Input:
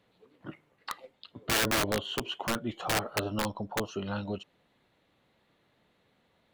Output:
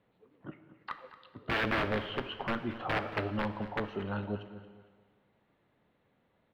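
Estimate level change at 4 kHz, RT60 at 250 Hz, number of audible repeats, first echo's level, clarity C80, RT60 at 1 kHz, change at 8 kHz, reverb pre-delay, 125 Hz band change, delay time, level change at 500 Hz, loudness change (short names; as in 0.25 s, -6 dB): -8.0 dB, 1.6 s, 3, -15.0 dB, 10.5 dB, 1.6 s, under -25 dB, 5 ms, -0.5 dB, 0.227 s, -1.5 dB, -3.0 dB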